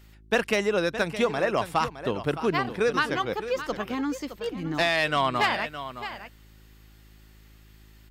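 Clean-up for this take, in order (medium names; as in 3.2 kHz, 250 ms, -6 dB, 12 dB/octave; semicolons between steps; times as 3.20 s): clip repair -13.5 dBFS; de-hum 53.2 Hz, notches 7; inverse comb 615 ms -12 dB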